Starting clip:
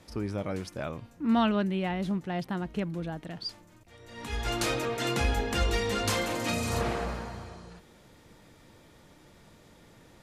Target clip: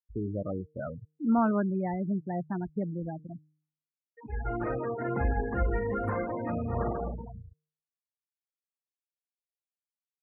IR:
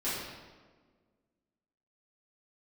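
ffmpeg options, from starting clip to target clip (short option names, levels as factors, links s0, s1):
-af "afftfilt=real='re*gte(hypot(re,im),0.0501)':imag='im*gte(hypot(re,im),0.0501)':win_size=1024:overlap=0.75,asuperstop=centerf=5000:order=12:qfactor=0.52,bandreject=f=153.2:t=h:w=4,bandreject=f=306.4:t=h:w=4,bandreject=f=459.6:t=h:w=4"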